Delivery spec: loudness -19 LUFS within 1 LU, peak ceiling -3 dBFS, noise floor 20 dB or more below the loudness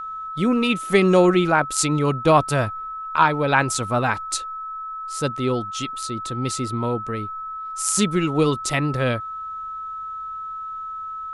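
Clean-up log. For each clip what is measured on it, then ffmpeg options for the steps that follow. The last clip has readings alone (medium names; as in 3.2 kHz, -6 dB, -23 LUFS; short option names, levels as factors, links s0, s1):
steady tone 1.3 kHz; tone level -29 dBFS; loudness -22.0 LUFS; peak level -1.5 dBFS; loudness target -19.0 LUFS
-> -af "bandreject=f=1300:w=30"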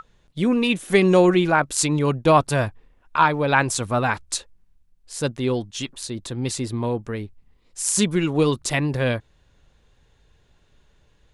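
steady tone not found; loudness -21.5 LUFS; peak level -2.5 dBFS; loudness target -19.0 LUFS
-> -af "volume=1.33,alimiter=limit=0.708:level=0:latency=1"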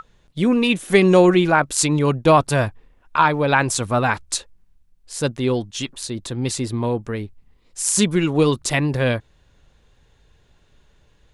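loudness -19.0 LUFS; peak level -3.0 dBFS; noise floor -58 dBFS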